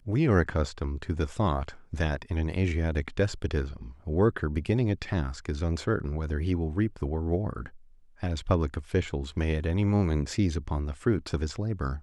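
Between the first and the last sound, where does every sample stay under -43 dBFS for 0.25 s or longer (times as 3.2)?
7.76–8.2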